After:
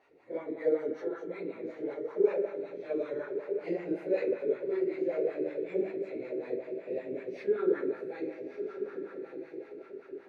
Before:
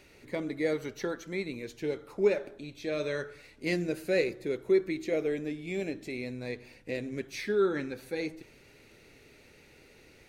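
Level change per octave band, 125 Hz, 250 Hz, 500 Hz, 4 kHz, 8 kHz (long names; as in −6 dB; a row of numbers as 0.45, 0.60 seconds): −12.0 dB, −2.0 dB, +0.5 dB, below −15 dB, below −20 dB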